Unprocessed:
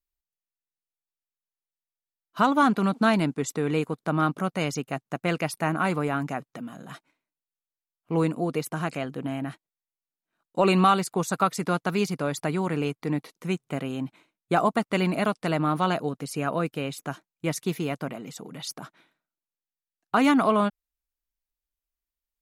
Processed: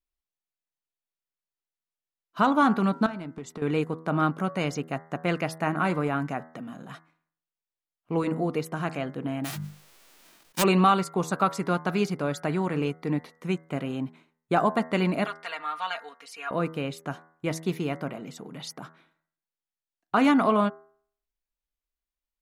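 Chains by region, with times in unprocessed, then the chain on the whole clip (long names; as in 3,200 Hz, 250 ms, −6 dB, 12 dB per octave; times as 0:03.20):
0:03.06–0:03.62: high-shelf EQ 6,500 Hz −6.5 dB + downward compressor 16 to 1, threshold −32 dBFS + hard clipping −29 dBFS
0:09.44–0:10.62: spectral envelope flattened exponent 0.1 + mains-hum notches 50/100/150/200 Hz + level that may fall only so fast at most 26 dB per second
0:15.25–0:16.51: high-pass filter 1,400 Hz + high-shelf EQ 6,800 Hz −9.5 dB + comb filter 4.3 ms, depth 84%
whole clip: high-shelf EQ 5,600 Hz −8.5 dB; hum removal 80.67 Hz, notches 26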